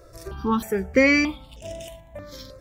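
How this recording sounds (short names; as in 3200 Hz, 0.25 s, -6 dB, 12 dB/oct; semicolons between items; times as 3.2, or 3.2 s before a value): notches that jump at a steady rate 3.2 Hz 840–4400 Hz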